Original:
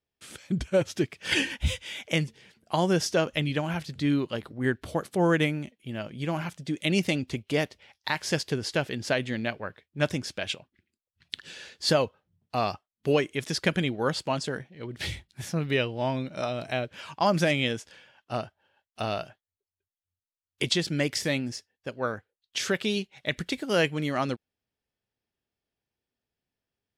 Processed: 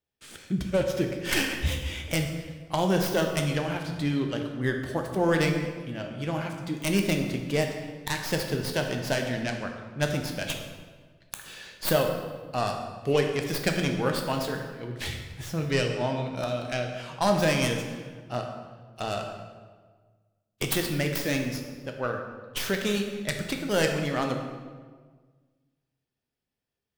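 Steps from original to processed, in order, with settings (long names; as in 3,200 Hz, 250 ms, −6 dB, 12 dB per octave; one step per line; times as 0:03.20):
stylus tracing distortion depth 0.27 ms
convolution reverb RT60 1.5 s, pre-delay 9 ms, DRR 3 dB
level −1.5 dB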